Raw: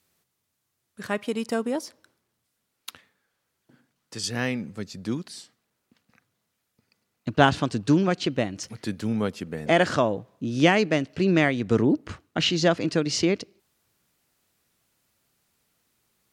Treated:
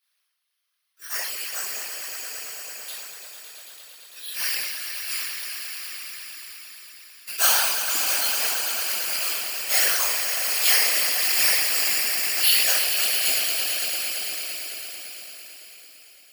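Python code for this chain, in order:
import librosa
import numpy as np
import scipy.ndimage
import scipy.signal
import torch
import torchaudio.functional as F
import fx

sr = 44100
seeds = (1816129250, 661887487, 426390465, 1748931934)

y = fx.rattle_buzz(x, sr, strikes_db=-29.0, level_db=-21.0)
y = fx.peak_eq(y, sr, hz=3700.0, db=2.5, octaves=0.77)
y = np.repeat(scipy.signal.resample_poly(y, 1, 6), 6)[:len(y)]
y = scipy.signal.sosfilt(scipy.signal.butter(2, 730.0, 'highpass', fs=sr, output='sos'), y)
y = np.diff(y, prepend=0.0)
y = fx.echo_swell(y, sr, ms=112, loudest=5, wet_db=-9)
y = fx.room_shoebox(y, sr, seeds[0], volume_m3=210.0, walls='mixed', distance_m=3.2)
y = fx.whisperise(y, sr, seeds[1])
y = fx.sustainer(y, sr, db_per_s=28.0)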